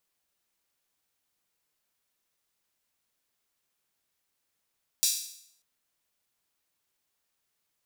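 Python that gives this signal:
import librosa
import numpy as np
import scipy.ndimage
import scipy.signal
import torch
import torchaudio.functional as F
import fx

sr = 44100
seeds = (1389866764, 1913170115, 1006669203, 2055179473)

y = fx.drum_hat_open(sr, length_s=0.59, from_hz=4800.0, decay_s=0.68)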